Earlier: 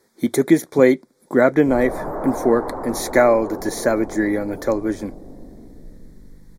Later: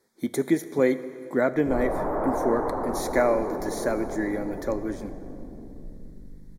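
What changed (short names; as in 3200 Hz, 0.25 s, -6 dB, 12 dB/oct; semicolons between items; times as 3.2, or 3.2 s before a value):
speech -10.0 dB; reverb: on, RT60 2.7 s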